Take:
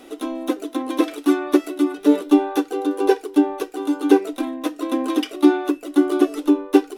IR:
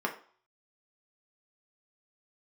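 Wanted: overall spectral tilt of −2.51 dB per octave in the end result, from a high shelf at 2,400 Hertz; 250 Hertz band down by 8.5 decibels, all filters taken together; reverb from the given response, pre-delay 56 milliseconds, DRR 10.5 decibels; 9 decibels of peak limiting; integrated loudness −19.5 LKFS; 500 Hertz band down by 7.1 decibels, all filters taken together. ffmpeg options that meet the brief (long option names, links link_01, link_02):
-filter_complex "[0:a]equalizer=frequency=250:width_type=o:gain=-8.5,equalizer=frequency=500:width_type=o:gain=-6,highshelf=frequency=2400:gain=4.5,alimiter=limit=-16dB:level=0:latency=1,asplit=2[link_01][link_02];[1:a]atrim=start_sample=2205,adelay=56[link_03];[link_02][link_03]afir=irnorm=-1:irlink=0,volume=-18dB[link_04];[link_01][link_04]amix=inputs=2:normalize=0,volume=9.5dB"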